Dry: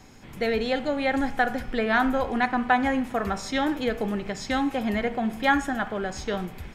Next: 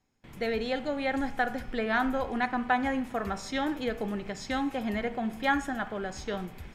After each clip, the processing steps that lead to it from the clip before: gate with hold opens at -38 dBFS; trim -5 dB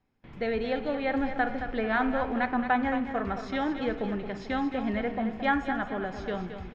distance through air 220 m; on a send: feedback delay 221 ms, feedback 41%, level -9 dB; on the sum: trim +1.5 dB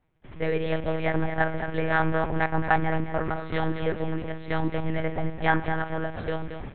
monotone LPC vocoder at 8 kHz 160 Hz; trim +3.5 dB

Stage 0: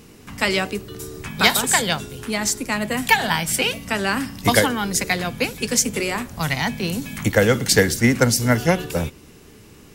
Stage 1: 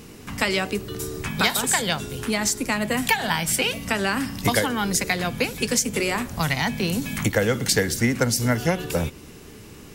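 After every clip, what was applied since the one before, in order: compression 2.5:1, threshold -24 dBFS, peak gain reduction 10 dB; trim +3 dB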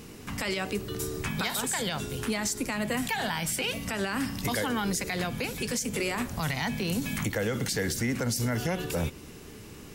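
peak limiter -17.5 dBFS, peak gain reduction 10.5 dB; trim -2.5 dB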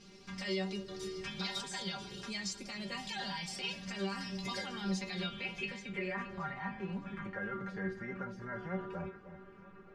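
inharmonic resonator 190 Hz, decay 0.21 s, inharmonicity 0.002; low-pass sweep 4.9 kHz -> 1.4 kHz, 4.77–6.56 s; echo whose repeats swap between lows and highs 310 ms, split 1 kHz, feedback 56%, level -11 dB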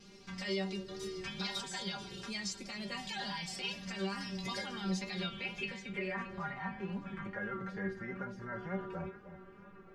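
vibrato 2.2 Hz 31 cents

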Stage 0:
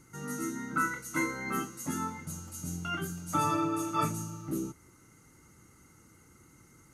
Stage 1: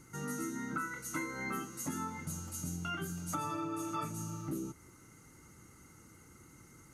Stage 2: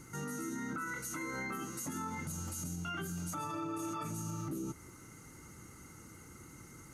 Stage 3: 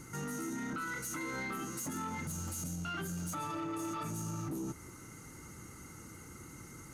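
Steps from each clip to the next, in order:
compression 6:1, threshold -36 dBFS, peak gain reduction 11.5 dB; trim +1 dB
peak limiter -36 dBFS, peak gain reduction 11 dB; trim +4.5 dB
saturation -36 dBFS, distortion -17 dB; trim +3 dB

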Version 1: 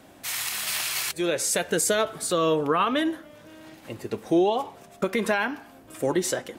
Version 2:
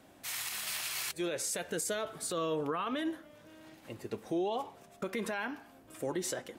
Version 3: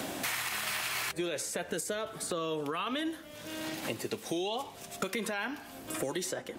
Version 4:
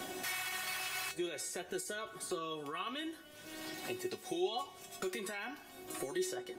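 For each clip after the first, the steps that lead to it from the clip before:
peak limiter -17.5 dBFS, peak gain reduction 7 dB; trim -8 dB
three bands compressed up and down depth 100%
feedback comb 370 Hz, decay 0.18 s, harmonics all, mix 90%; trim +6.5 dB

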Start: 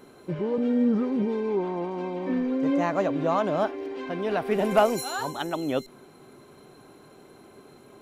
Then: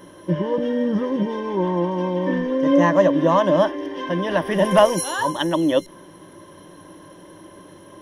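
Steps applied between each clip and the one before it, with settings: rippled EQ curve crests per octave 1.2, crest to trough 14 dB; trim +5.5 dB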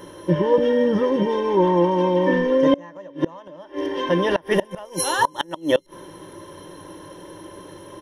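comb 2.2 ms, depth 39%; inverted gate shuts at -10 dBFS, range -27 dB; trim +3.5 dB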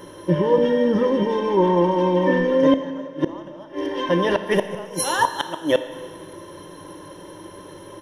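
Schroeder reverb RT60 1.8 s, combs from 26 ms, DRR 10 dB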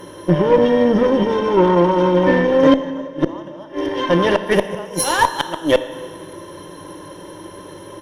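Chebyshev shaper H 6 -23 dB, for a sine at -5 dBFS; trim +4 dB

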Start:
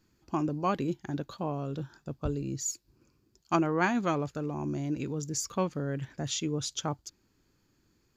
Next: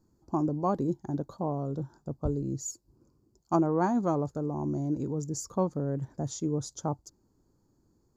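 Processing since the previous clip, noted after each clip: FFT filter 920 Hz 0 dB, 2.7 kHz -27 dB, 4.4 kHz -12 dB, 7.3 kHz -5 dB, 14 kHz -9 dB; trim +2 dB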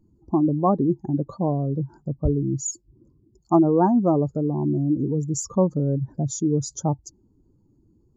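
spectral contrast enhancement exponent 1.7; trim +8.5 dB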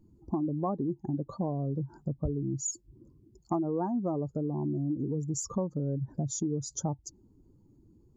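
compression 4:1, threshold -30 dBFS, peak gain reduction 14.5 dB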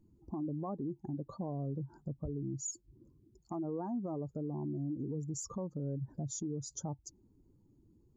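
peak limiter -25.5 dBFS, peak gain reduction 7 dB; trim -5.5 dB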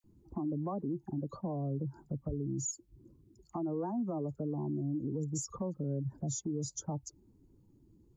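phase dispersion lows, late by 42 ms, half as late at 1.5 kHz; trim +2.5 dB

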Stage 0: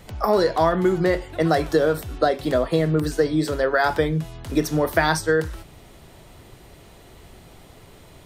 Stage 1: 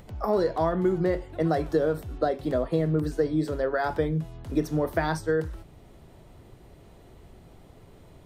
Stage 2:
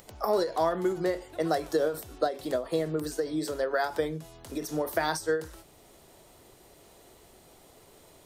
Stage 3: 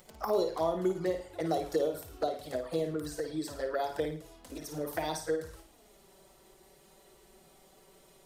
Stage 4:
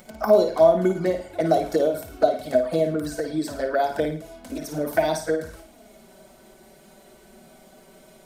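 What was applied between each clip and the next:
tilt shelf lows +5 dB, about 1.1 kHz; upward compressor, threshold -38 dBFS; trim -8.5 dB
tone controls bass -13 dB, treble +11 dB; endings held to a fixed fall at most 160 dB/s
touch-sensitive flanger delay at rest 5.8 ms, full sweep at -23 dBFS; on a send: flutter echo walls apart 9.3 m, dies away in 0.4 s; on the sum: trim -2 dB
small resonant body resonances 230/640/1500/2200 Hz, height 12 dB, ringing for 45 ms; trim +6 dB

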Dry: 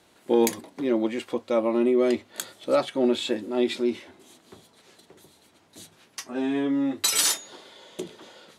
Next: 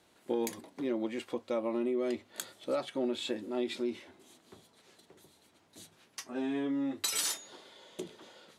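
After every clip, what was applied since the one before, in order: compression 3:1, threshold -23 dBFS, peak gain reduction 6.5 dB; trim -6.5 dB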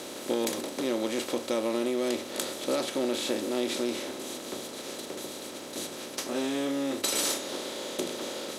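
spectral levelling over time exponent 0.4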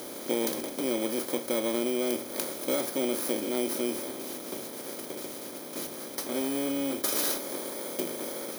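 bit-reversed sample order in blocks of 16 samples; de-hum 49.94 Hz, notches 3

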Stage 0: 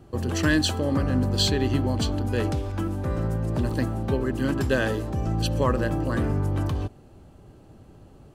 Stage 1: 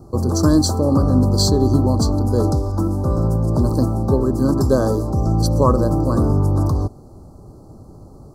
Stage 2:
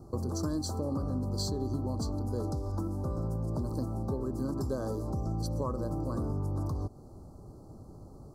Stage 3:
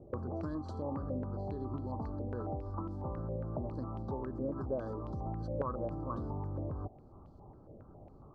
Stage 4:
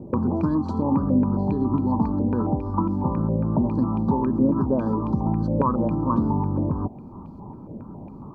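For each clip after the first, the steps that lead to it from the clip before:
elliptic band-stop 1.2–4.7 kHz, stop band 70 dB; trim +8.5 dB
compression 4:1, threshold -23 dBFS, peak gain reduction 12 dB; trim -8 dB
step-sequenced low-pass 7.3 Hz 550–3100 Hz; trim -6.5 dB
small resonant body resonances 210/940/2400 Hz, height 16 dB, ringing for 25 ms; trim +7 dB

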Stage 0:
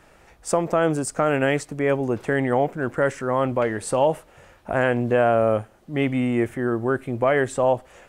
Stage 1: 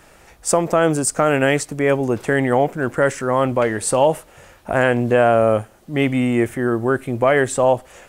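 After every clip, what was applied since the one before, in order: treble shelf 4.8 kHz +8 dB; trim +4 dB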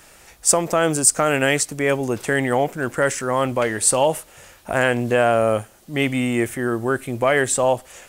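treble shelf 2.5 kHz +10.5 dB; trim -3.5 dB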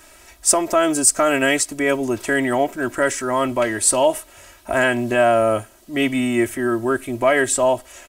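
comb 3.1 ms, depth 77%; trim -1 dB

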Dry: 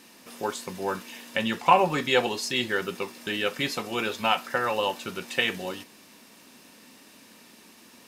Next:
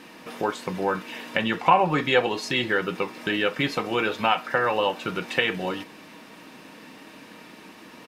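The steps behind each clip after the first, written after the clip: tone controls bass -1 dB, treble -14 dB; comb 6.4 ms, depth 36%; compression 1.5:1, threshold -37 dBFS, peak gain reduction 9 dB; trim +9 dB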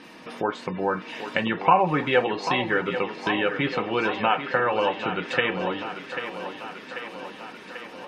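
spectral gate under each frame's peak -30 dB strong; low-pass that closes with the level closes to 2.8 kHz, closed at -21 dBFS; thinning echo 790 ms, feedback 68%, high-pass 200 Hz, level -9.5 dB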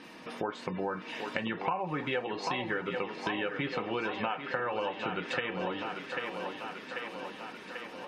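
compression 5:1, threshold -26 dBFS, peak gain reduction 13 dB; trim -3.5 dB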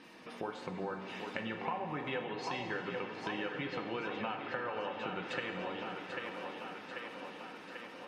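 reverberation RT60 3.3 s, pre-delay 38 ms, DRR 5.5 dB; trim -6 dB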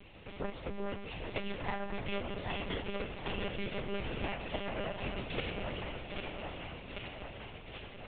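comb filter that takes the minimum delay 0.35 ms; monotone LPC vocoder at 8 kHz 200 Hz; trim +2.5 dB

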